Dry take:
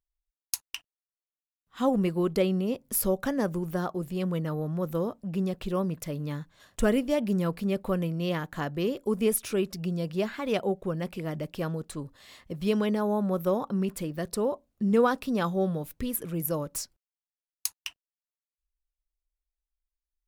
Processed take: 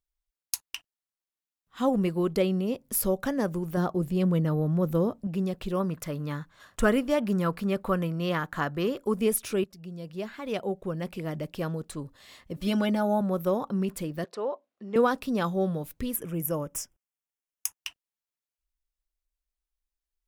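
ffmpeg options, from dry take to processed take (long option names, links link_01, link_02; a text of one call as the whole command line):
ffmpeg -i in.wav -filter_complex "[0:a]asettb=1/sr,asplit=3[link_01][link_02][link_03];[link_01]atrim=end=3.774[link_04];[link_02]atrim=start=3.77:end=5.27,asetpts=PTS-STARTPTS,afade=type=in:duration=0.004:curve=qsin,afade=type=out:start_time=1.496:duration=0.004:curve=qsin,lowshelf=frequency=450:gain=6.5[link_05];[link_03]atrim=start=5.266[link_06];[link_04][link_05]acrossfade=duration=0.004:curve1=hsin:curve2=qsin[link_07];[link_07][link_06]acrossfade=duration=0.004:curve1=qsin:curve2=hsin,asettb=1/sr,asplit=3[link_08][link_09][link_10];[link_08]atrim=end=5.804[link_11];[link_09]atrim=start=5.8:end=9.13,asetpts=PTS-STARTPTS,afade=type=in:duration=0.004:curve=qsin,afade=type=out:start_time=3.326:duration=0.004:curve=qsin,equalizer=frequency=1300:width_type=o:width=0.99:gain=8[link_12];[link_10]atrim=start=9.126[link_13];[link_11][link_12]acrossfade=duration=0.004:curve1=hsin:curve2=qsin[link_14];[link_14][link_13]acrossfade=duration=0.004:curve1=qsin:curve2=hsin,asettb=1/sr,asplit=3[link_15][link_16][link_17];[link_15]atrim=end=12.564[link_18];[link_16]atrim=start=12.56:end=13.21,asetpts=PTS-STARTPTS,afade=type=in:duration=0.004:curve=qsin,afade=type=out:start_time=0.646:duration=0.004:curve=qsin,aecho=1:1:3.4:0.89,atrim=end_sample=28665[link_19];[link_17]atrim=start=13.206[link_20];[link_18][link_19]acrossfade=duration=0.004:curve1=hsin:curve2=qsin[link_21];[link_21][link_20]acrossfade=duration=0.004:curve1=qsin:curve2=hsin,asettb=1/sr,asplit=3[link_22][link_23][link_24];[link_22]atrim=end=14.244[link_25];[link_23]atrim=start=14.24:end=14.96,asetpts=PTS-STARTPTS,afade=type=in:duration=0.004:curve=qsin,afade=type=out:start_time=0.716:duration=0.004:curve=qsin,highpass=470,lowpass=3500[link_26];[link_24]atrim=start=14.956[link_27];[link_25][link_26]acrossfade=duration=0.004:curve1=hsin:curve2=qsin[link_28];[link_28][link_27]acrossfade=duration=0.004:curve1=qsin:curve2=hsin,asettb=1/sr,asplit=3[link_29][link_30][link_31];[link_29]atrim=end=16.164[link_32];[link_30]atrim=start=16.16:end=17.81,asetpts=PTS-STARTPTS,afade=type=in:duration=0.004:curve=qsin,afade=type=out:start_time=1.646:duration=0.004:curve=qsin,asuperstop=centerf=4200:order=4:qfactor=2.4[link_33];[link_31]atrim=start=17.806[link_34];[link_32][link_33]acrossfade=duration=0.004:curve1=hsin:curve2=qsin[link_35];[link_35][link_34]acrossfade=duration=0.004:curve1=qsin:curve2=hsin,asplit=2[link_36][link_37];[link_36]atrim=end=9.64,asetpts=PTS-STARTPTS,afade=type=out:start_time=9.636:duration=0.004:curve=hsin:silence=0.188365[link_38];[link_37]atrim=start=9.64,asetpts=PTS-STARTPTS,afade=type=in:duration=1.56:silence=0.188365[link_39];[link_38][link_39]concat=n=2:v=0:a=1" out.wav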